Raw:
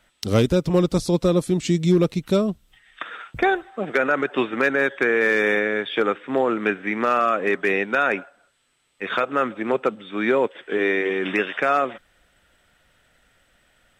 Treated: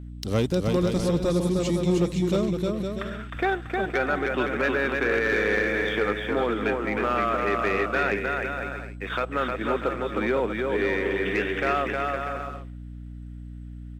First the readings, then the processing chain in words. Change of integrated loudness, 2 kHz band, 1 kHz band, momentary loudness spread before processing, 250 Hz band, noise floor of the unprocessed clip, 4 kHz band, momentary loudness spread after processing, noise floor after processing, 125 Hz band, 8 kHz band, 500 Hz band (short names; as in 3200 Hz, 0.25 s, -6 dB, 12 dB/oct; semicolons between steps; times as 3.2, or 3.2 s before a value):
-4.0 dB, -3.5 dB, -3.0 dB, 7 LU, -3.5 dB, -63 dBFS, -3.0 dB, 11 LU, -39 dBFS, -2.5 dB, n/a, -3.5 dB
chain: bouncing-ball echo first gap 0.31 s, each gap 0.65×, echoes 5; sample leveller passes 1; hum 60 Hz, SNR 12 dB; gain -8.5 dB